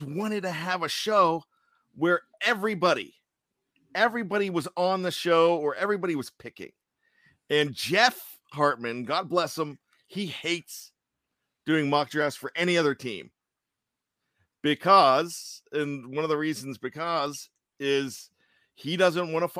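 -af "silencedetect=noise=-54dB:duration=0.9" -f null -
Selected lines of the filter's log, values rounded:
silence_start: 13.28
silence_end: 14.64 | silence_duration: 1.36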